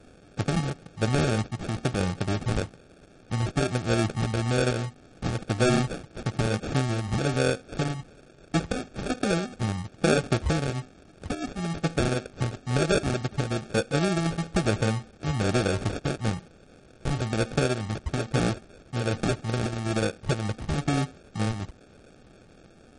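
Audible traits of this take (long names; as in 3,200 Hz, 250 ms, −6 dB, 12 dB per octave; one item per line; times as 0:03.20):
a quantiser's noise floor 8 bits, dither triangular
phaser sweep stages 8, 1.1 Hz, lowest notch 480–3,500 Hz
aliases and images of a low sample rate 1,000 Hz, jitter 0%
MP3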